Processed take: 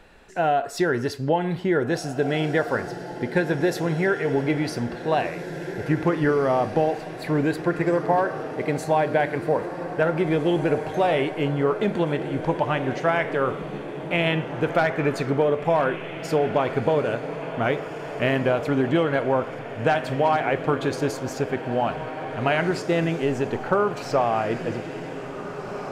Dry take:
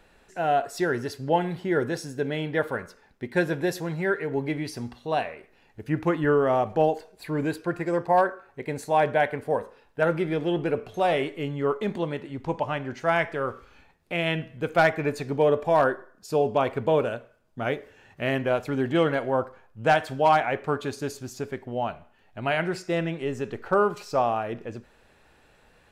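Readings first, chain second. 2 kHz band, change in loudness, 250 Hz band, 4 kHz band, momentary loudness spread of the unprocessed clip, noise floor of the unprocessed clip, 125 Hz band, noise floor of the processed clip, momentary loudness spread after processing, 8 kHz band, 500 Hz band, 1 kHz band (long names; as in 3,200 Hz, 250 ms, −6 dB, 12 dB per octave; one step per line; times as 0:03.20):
+2.5 dB, +2.0 dB, +4.5 dB, +3.0 dB, 12 LU, −60 dBFS, +5.0 dB, −35 dBFS, 9 LU, can't be measured, +2.5 dB, +1.0 dB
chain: high-shelf EQ 7,000 Hz −6.5 dB
downward compressor, threshold −24 dBFS, peak gain reduction 9 dB
on a send: feedback delay with all-pass diffusion 1,886 ms, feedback 59%, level −10.5 dB
on the sum: level +6.5 dB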